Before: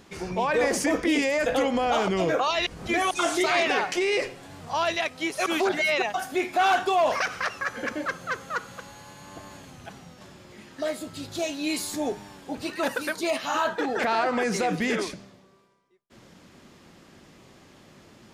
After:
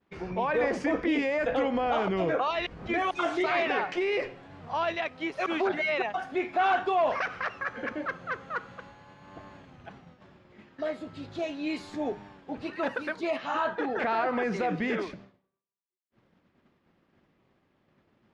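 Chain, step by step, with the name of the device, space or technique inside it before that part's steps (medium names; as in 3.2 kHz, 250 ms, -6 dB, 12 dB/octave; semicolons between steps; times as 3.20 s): hearing-loss simulation (low-pass 2.6 kHz 12 dB/octave; expander -43 dBFS); trim -3 dB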